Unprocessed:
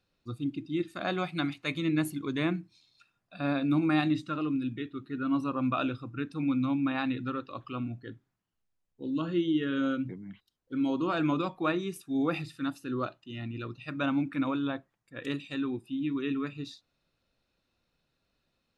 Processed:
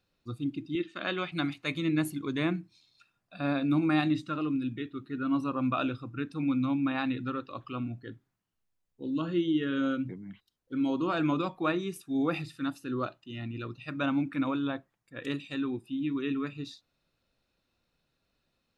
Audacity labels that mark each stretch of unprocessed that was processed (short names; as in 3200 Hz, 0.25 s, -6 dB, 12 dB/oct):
0.750000	1.320000	speaker cabinet 220–6100 Hz, peaks and dips at 730 Hz -9 dB, 1800 Hz +3 dB, 3000 Hz +8 dB, 5000 Hz -5 dB